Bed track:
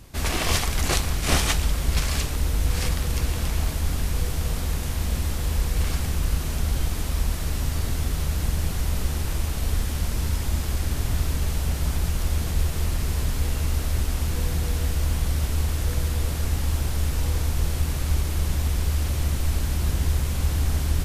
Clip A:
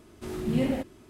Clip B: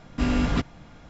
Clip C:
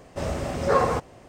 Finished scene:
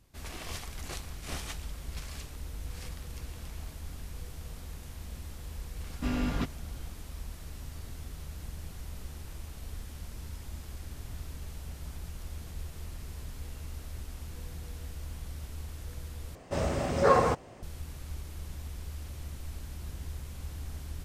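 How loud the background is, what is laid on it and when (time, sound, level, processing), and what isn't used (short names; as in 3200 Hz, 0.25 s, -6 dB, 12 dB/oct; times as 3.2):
bed track -17 dB
5.84 add B -7.5 dB
16.35 replace with C -1.5 dB
not used: A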